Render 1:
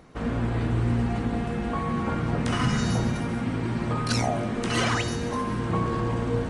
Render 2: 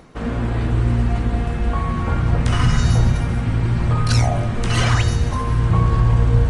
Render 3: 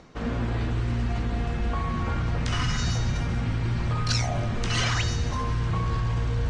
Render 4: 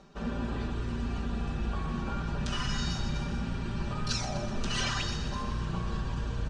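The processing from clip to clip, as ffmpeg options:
-af "bandreject=f=67.67:t=h:w=4,bandreject=f=135.34:t=h:w=4,bandreject=f=203.01:t=h:w=4,bandreject=f=270.68:t=h:w=4,bandreject=f=338.35:t=h:w=4,bandreject=f=406.02:t=h:w=4,bandreject=f=473.69:t=h:w=4,bandreject=f=541.36:t=h:w=4,bandreject=f=609.03:t=h:w=4,bandreject=f=676.7:t=h:w=4,bandreject=f=744.37:t=h:w=4,bandreject=f=812.04:t=h:w=4,bandreject=f=879.71:t=h:w=4,bandreject=f=947.38:t=h:w=4,bandreject=f=1015.05:t=h:w=4,bandreject=f=1082.72:t=h:w=4,bandreject=f=1150.39:t=h:w=4,bandreject=f=1218.06:t=h:w=4,bandreject=f=1285.73:t=h:w=4,bandreject=f=1353.4:t=h:w=4,bandreject=f=1421.07:t=h:w=4,bandreject=f=1488.74:t=h:w=4,bandreject=f=1556.41:t=h:w=4,bandreject=f=1624.08:t=h:w=4,bandreject=f=1691.75:t=h:w=4,bandreject=f=1759.42:t=h:w=4,bandreject=f=1827.09:t=h:w=4,bandreject=f=1894.76:t=h:w=4,bandreject=f=1962.43:t=h:w=4,bandreject=f=2030.1:t=h:w=4,bandreject=f=2097.77:t=h:w=4,bandreject=f=2165.44:t=h:w=4,bandreject=f=2233.11:t=h:w=4,bandreject=f=2300.78:t=h:w=4,bandreject=f=2368.45:t=h:w=4,asubboost=boost=10:cutoff=84,areverse,acompressor=mode=upward:threshold=0.0282:ratio=2.5,areverse,volume=1.68"
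-filter_complex "[0:a]lowpass=f=6500:w=0.5412,lowpass=f=6500:w=1.3066,highshelf=f=4700:g=8,acrossover=split=1300[s0][s1];[s0]alimiter=limit=0.178:level=0:latency=1:release=23[s2];[s2][s1]amix=inputs=2:normalize=0,volume=0.562"
-filter_complex "[0:a]bandreject=f=2100:w=5.7,aecho=1:1:5.1:0.94,asplit=2[s0][s1];[s1]asplit=7[s2][s3][s4][s5][s6][s7][s8];[s2]adelay=124,afreqshift=31,volume=0.266[s9];[s3]adelay=248,afreqshift=62,volume=0.155[s10];[s4]adelay=372,afreqshift=93,volume=0.0891[s11];[s5]adelay=496,afreqshift=124,volume=0.0519[s12];[s6]adelay=620,afreqshift=155,volume=0.0302[s13];[s7]adelay=744,afreqshift=186,volume=0.0174[s14];[s8]adelay=868,afreqshift=217,volume=0.0101[s15];[s9][s10][s11][s12][s13][s14][s15]amix=inputs=7:normalize=0[s16];[s0][s16]amix=inputs=2:normalize=0,volume=0.422"

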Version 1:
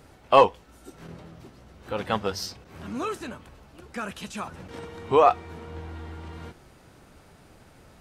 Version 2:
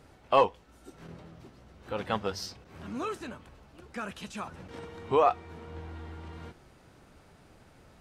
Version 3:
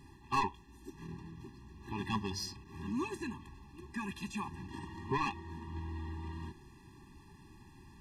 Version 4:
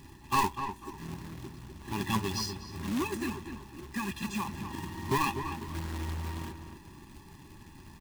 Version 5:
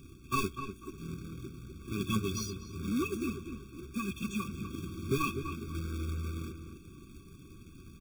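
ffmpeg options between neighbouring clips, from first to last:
-filter_complex "[0:a]asplit=2[s0][s1];[s1]alimiter=limit=0.266:level=0:latency=1:release=491,volume=0.794[s2];[s0][s2]amix=inputs=2:normalize=0,highshelf=f=9800:g=-6.5,volume=0.355"
-af "asoftclip=type=tanh:threshold=0.0562,afftfilt=real='re*eq(mod(floor(b*sr/1024/400),2),0)':imag='im*eq(mod(floor(b*sr/1024/400),2),0)':win_size=1024:overlap=0.75,volume=1.26"
-filter_complex "[0:a]acrusher=bits=2:mode=log:mix=0:aa=0.000001,asplit=2[s0][s1];[s1]adelay=248,lowpass=f=2200:p=1,volume=0.398,asplit=2[s2][s3];[s3]adelay=248,lowpass=f=2200:p=1,volume=0.28,asplit=2[s4][s5];[s5]adelay=248,lowpass=f=2200:p=1,volume=0.28[s6];[s0][s2][s4][s6]amix=inputs=4:normalize=0,volume=1.68"
-af "afftfilt=real='re*eq(mod(floor(b*sr/1024/540),2),0)':imag='im*eq(mod(floor(b*sr/1024/540),2),0)':win_size=1024:overlap=0.75"

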